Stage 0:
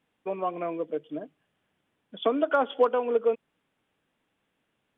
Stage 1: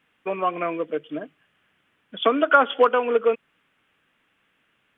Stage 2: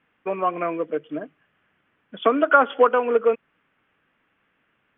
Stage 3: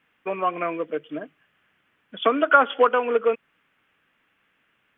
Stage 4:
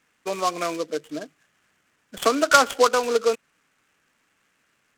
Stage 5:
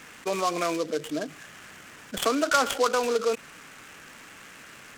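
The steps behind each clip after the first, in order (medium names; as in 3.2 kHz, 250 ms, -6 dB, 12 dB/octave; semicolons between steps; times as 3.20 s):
high-order bell 1.9 kHz +8.5 dB; trim +4 dB
low-pass 2.2 kHz 12 dB/octave; trim +1 dB
treble shelf 2.2 kHz +10 dB; trim -2.5 dB
delay time shaken by noise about 4.4 kHz, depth 0.046 ms
level flattener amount 50%; trim -8 dB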